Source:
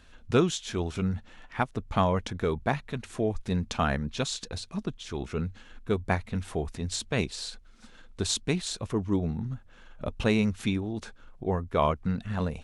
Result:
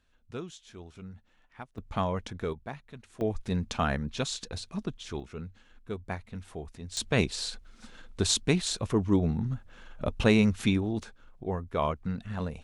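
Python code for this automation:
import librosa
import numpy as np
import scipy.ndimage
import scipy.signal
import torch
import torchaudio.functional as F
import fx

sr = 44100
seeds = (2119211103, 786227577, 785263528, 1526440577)

y = fx.gain(x, sr, db=fx.steps((0.0, -16.0), (1.78, -5.0), (2.53, -12.5), (3.21, -1.5), (5.2, -9.0), (6.97, 2.5), (11.03, -4.0)))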